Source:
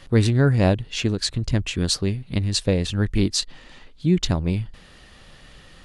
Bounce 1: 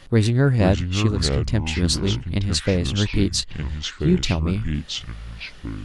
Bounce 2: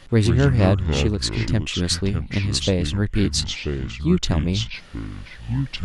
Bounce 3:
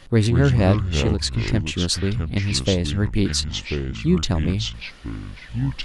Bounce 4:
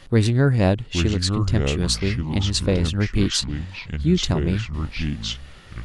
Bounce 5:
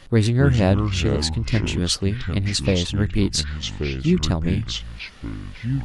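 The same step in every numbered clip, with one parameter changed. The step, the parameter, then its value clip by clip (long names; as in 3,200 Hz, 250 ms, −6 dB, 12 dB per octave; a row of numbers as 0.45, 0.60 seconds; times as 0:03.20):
delay with pitch and tempo change per echo, delay time: 438, 88, 142, 780, 233 milliseconds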